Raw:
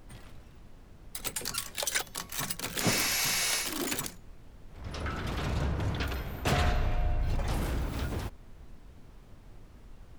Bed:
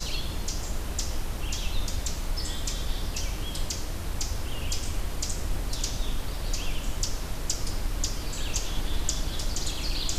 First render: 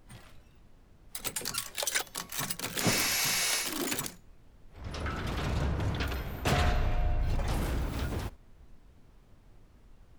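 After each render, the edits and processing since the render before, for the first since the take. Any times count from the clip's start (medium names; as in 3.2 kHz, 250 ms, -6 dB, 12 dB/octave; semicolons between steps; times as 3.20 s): noise print and reduce 6 dB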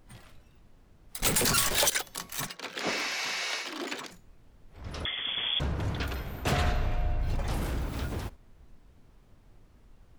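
1.22–1.90 s: power-law waveshaper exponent 0.35; 2.47–4.11 s: three-band isolator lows -22 dB, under 250 Hz, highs -21 dB, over 5.3 kHz; 5.05–5.60 s: frequency inversion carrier 3.4 kHz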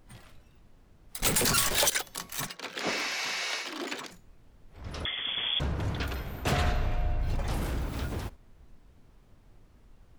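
no audible change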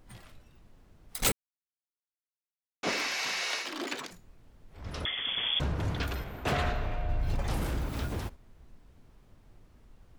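1.32–2.83 s: mute; 6.24–7.09 s: tone controls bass -4 dB, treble -7 dB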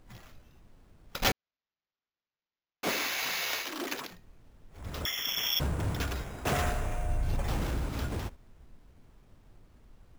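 sample-and-hold 5×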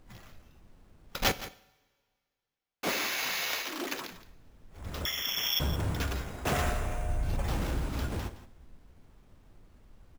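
delay 168 ms -15 dB; two-slope reverb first 0.74 s, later 2.2 s, from -20 dB, DRR 15 dB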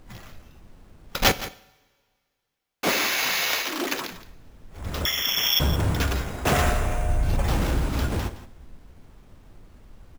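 trim +8 dB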